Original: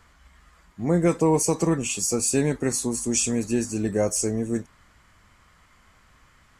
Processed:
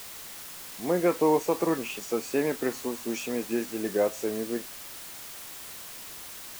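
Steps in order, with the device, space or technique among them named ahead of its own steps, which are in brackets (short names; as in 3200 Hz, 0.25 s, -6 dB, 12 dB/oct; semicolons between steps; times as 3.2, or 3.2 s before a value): wax cylinder (BPF 350–2500 Hz; wow and flutter; white noise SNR 12 dB)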